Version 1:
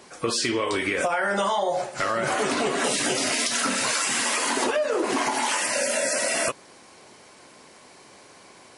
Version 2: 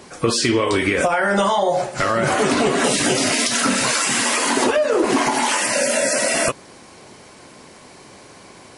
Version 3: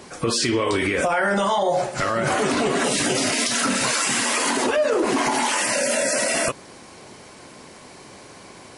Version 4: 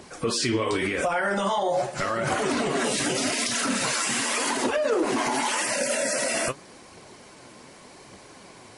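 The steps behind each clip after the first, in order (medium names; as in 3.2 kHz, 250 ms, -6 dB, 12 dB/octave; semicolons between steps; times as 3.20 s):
bass shelf 240 Hz +9 dB; trim +5 dB
peak limiter -12.5 dBFS, peak gain reduction 6 dB
flange 0.86 Hz, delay 0 ms, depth 9.7 ms, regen +56%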